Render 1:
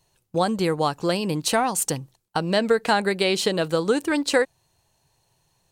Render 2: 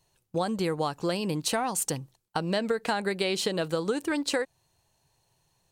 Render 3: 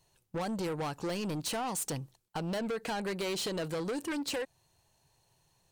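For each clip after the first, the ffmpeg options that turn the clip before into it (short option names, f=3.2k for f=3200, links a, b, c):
-af "acompressor=threshold=-20dB:ratio=6,volume=-3.5dB"
-af "asoftclip=type=tanh:threshold=-31dB"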